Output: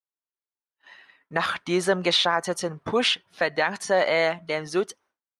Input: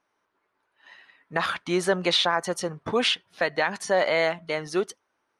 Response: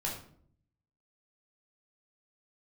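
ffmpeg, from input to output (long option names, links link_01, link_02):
-af "agate=range=-33dB:threshold=-54dB:ratio=3:detection=peak,volume=1dB"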